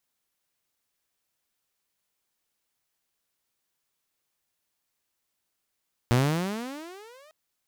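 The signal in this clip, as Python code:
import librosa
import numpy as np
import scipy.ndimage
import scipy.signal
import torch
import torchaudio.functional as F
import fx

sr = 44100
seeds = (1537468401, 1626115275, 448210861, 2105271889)

y = fx.riser_tone(sr, length_s=1.2, level_db=-15.0, wave='saw', hz=116.0, rise_st=29.5, swell_db=-34.5)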